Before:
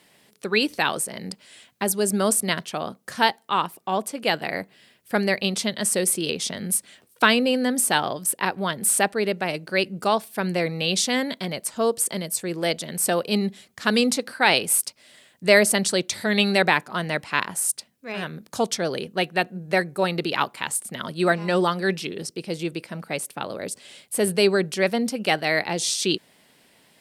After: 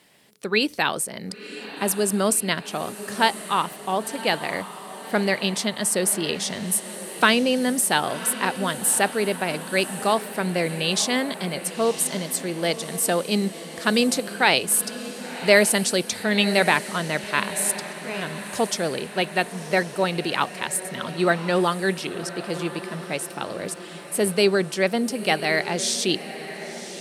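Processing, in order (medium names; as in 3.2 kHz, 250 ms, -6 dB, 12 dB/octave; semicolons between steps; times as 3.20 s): echo that smears into a reverb 1046 ms, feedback 57%, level -13 dB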